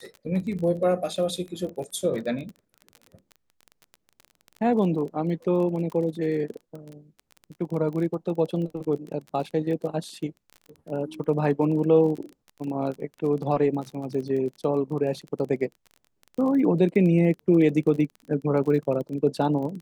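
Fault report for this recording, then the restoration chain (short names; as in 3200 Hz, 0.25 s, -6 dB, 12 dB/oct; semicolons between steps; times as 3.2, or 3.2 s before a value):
crackle 26/s -33 dBFS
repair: de-click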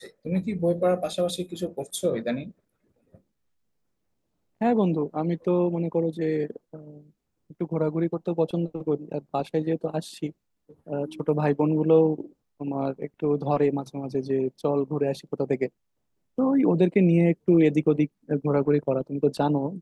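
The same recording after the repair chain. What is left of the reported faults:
none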